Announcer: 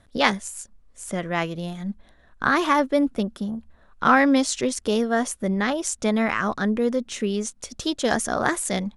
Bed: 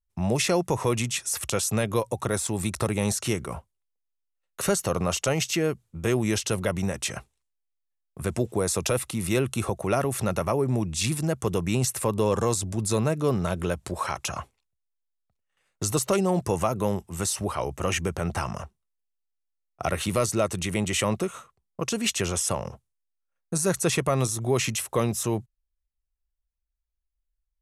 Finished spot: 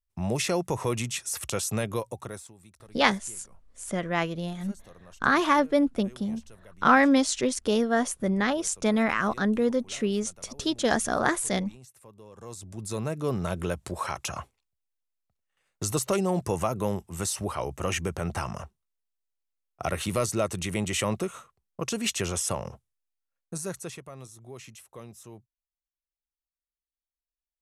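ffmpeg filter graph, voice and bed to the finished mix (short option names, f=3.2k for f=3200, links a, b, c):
-filter_complex "[0:a]adelay=2800,volume=-2dB[a];[1:a]volume=20dB,afade=t=out:st=1.83:d=0.71:silence=0.0749894,afade=t=in:st=12.34:d=1.2:silence=0.0668344,afade=t=out:st=22.98:d=1.04:silence=0.133352[b];[a][b]amix=inputs=2:normalize=0"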